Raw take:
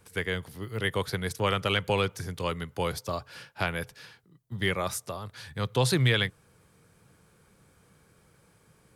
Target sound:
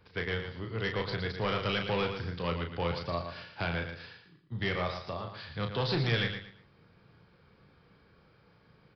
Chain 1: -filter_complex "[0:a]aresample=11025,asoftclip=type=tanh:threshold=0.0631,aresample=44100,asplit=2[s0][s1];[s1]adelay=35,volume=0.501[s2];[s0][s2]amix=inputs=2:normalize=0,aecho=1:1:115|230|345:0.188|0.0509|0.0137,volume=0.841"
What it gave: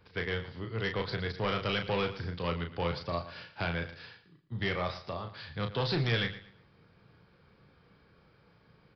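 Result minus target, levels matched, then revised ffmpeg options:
echo-to-direct -6.5 dB
-filter_complex "[0:a]aresample=11025,asoftclip=type=tanh:threshold=0.0631,aresample=44100,asplit=2[s0][s1];[s1]adelay=35,volume=0.501[s2];[s0][s2]amix=inputs=2:normalize=0,aecho=1:1:115|230|345:0.398|0.107|0.029,volume=0.841"

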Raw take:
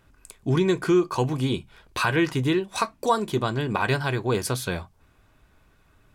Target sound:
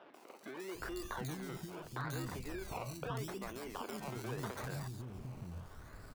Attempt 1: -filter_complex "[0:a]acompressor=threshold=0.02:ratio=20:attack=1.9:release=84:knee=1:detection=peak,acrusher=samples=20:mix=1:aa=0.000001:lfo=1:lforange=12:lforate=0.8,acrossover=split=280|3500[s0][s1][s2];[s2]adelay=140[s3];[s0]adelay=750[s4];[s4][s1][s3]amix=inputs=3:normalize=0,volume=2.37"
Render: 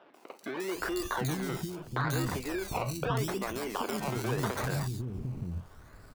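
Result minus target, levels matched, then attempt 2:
compression: peak gain reduction -10 dB
-filter_complex "[0:a]acompressor=threshold=0.00596:ratio=20:attack=1.9:release=84:knee=1:detection=peak,acrusher=samples=20:mix=1:aa=0.000001:lfo=1:lforange=12:lforate=0.8,acrossover=split=280|3500[s0][s1][s2];[s2]adelay=140[s3];[s0]adelay=750[s4];[s4][s1][s3]amix=inputs=3:normalize=0,volume=2.37"

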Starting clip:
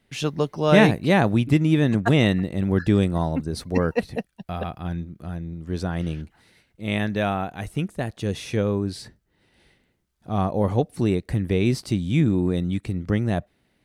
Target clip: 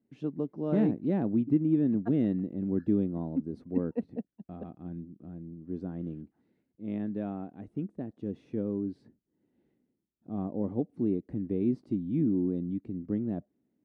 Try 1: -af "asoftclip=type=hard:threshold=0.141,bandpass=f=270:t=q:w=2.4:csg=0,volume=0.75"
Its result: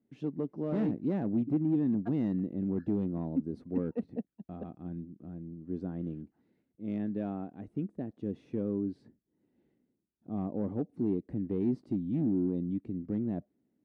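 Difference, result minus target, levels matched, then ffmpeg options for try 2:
hard clipper: distortion +11 dB
-af "asoftclip=type=hard:threshold=0.335,bandpass=f=270:t=q:w=2.4:csg=0,volume=0.75"

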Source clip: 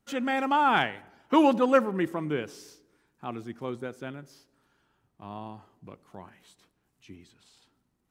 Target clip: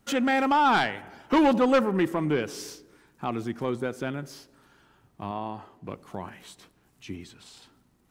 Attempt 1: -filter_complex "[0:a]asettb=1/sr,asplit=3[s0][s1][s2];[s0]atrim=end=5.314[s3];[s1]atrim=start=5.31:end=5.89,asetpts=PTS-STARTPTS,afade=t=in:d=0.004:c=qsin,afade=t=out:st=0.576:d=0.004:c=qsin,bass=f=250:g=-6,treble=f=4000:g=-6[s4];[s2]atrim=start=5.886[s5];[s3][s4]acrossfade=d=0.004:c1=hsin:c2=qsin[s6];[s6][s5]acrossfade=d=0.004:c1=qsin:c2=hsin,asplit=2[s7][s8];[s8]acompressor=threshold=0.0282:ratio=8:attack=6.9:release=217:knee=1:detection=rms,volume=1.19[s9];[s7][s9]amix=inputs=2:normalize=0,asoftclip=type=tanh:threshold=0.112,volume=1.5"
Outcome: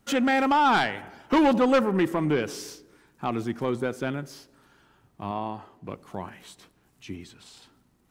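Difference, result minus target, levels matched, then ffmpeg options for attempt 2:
compression: peak gain reduction -6 dB
-filter_complex "[0:a]asettb=1/sr,asplit=3[s0][s1][s2];[s0]atrim=end=5.314[s3];[s1]atrim=start=5.31:end=5.89,asetpts=PTS-STARTPTS,afade=t=in:d=0.004:c=qsin,afade=t=out:st=0.576:d=0.004:c=qsin,bass=f=250:g=-6,treble=f=4000:g=-6[s4];[s2]atrim=start=5.886[s5];[s3][s4]acrossfade=d=0.004:c1=hsin:c2=qsin[s6];[s6][s5]acrossfade=d=0.004:c1=qsin:c2=hsin,asplit=2[s7][s8];[s8]acompressor=threshold=0.0126:ratio=8:attack=6.9:release=217:knee=1:detection=rms,volume=1.19[s9];[s7][s9]amix=inputs=2:normalize=0,asoftclip=type=tanh:threshold=0.112,volume=1.5"

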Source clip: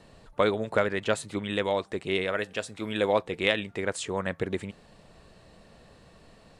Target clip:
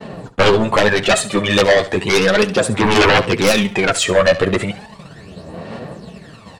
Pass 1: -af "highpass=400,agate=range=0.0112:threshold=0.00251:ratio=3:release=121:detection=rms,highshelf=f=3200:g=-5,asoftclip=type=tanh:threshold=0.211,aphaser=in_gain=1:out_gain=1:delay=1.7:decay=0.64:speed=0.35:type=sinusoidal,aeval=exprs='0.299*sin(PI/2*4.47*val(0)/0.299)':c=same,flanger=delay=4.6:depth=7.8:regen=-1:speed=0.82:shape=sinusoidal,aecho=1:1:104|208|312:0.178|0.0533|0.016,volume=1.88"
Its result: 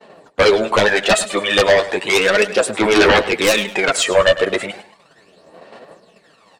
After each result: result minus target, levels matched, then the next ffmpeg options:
echo 35 ms late; 125 Hz band -9.0 dB
-af "highpass=400,agate=range=0.0112:threshold=0.00251:ratio=3:release=121:detection=rms,highshelf=f=3200:g=-5,asoftclip=type=tanh:threshold=0.211,aphaser=in_gain=1:out_gain=1:delay=1.7:decay=0.64:speed=0.35:type=sinusoidal,aeval=exprs='0.299*sin(PI/2*4.47*val(0)/0.299)':c=same,flanger=delay=4.6:depth=7.8:regen=-1:speed=0.82:shape=sinusoidal,aecho=1:1:69|138|207:0.178|0.0533|0.016,volume=1.88"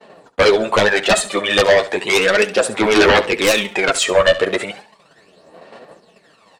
125 Hz band -9.0 dB
-af "highpass=110,agate=range=0.0112:threshold=0.00251:ratio=3:release=121:detection=rms,highshelf=f=3200:g=-5,asoftclip=type=tanh:threshold=0.211,aphaser=in_gain=1:out_gain=1:delay=1.7:decay=0.64:speed=0.35:type=sinusoidal,aeval=exprs='0.299*sin(PI/2*4.47*val(0)/0.299)':c=same,flanger=delay=4.6:depth=7.8:regen=-1:speed=0.82:shape=sinusoidal,aecho=1:1:69|138|207:0.178|0.0533|0.016,volume=1.88"

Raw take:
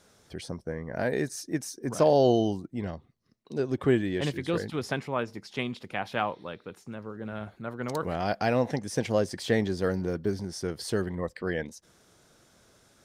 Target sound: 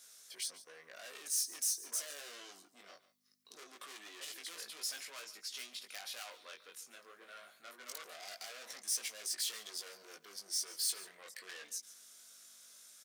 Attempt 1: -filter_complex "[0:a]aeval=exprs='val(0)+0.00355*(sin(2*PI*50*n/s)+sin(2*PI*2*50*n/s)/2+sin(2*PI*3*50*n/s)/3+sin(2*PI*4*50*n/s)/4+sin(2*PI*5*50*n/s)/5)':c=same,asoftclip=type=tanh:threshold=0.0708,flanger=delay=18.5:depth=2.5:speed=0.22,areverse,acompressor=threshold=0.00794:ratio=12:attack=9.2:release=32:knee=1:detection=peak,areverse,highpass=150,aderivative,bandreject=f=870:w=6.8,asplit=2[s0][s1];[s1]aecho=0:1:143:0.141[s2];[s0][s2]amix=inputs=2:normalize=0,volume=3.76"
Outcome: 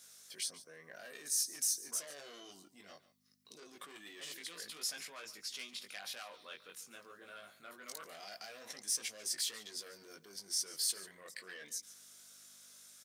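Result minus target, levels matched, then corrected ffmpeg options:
125 Hz band +10.5 dB; saturation: distortion -7 dB
-filter_complex "[0:a]aeval=exprs='val(0)+0.00355*(sin(2*PI*50*n/s)+sin(2*PI*2*50*n/s)/2+sin(2*PI*3*50*n/s)/3+sin(2*PI*4*50*n/s)/4+sin(2*PI*5*50*n/s)/5)':c=same,asoftclip=type=tanh:threshold=0.0188,flanger=delay=18.5:depth=2.5:speed=0.22,areverse,acompressor=threshold=0.00794:ratio=12:attack=9.2:release=32:knee=1:detection=peak,areverse,highpass=340,aderivative,bandreject=f=870:w=6.8,asplit=2[s0][s1];[s1]aecho=0:1:143:0.141[s2];[s0][s2]amix=inputs=2:normalize=0,volume=3.76"

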